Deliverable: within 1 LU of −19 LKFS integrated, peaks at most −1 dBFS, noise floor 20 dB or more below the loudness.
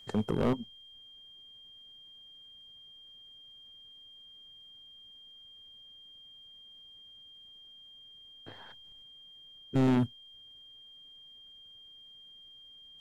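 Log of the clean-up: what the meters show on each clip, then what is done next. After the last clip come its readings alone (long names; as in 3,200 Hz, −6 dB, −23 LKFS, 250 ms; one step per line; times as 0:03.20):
share of clipped samples 0.7%; peaks flattened at −22.0 dBFS; interfering tone 3,200 Hz; level of the tone −51 dBFS; integrated loudness −31.5 LKFS; sample peak −22.0 dBFS; target loudness −19.0 LKFS
→ clipped peaks rebuilt −22 dBFS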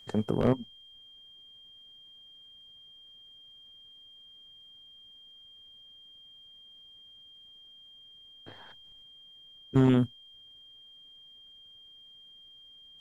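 share of clipped samples 0.0%; interfering tone 3,200 Hz; level of the tone −51 dBFS
→ notch filter 3,200 Hz, Q 30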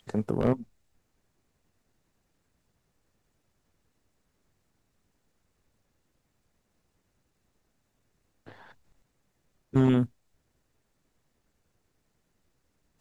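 interfering tone none found; integrated loudness −27.0 LKFS; sample peak −13.0 dBFS; target loudness −19.0 LKFS
→ level +8 dB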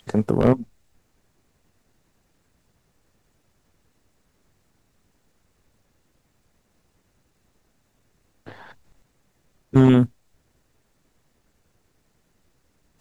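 integrated loudness −19.0 LKFS; sample peak −5.0 dBFS; background noise floor −68 dBFS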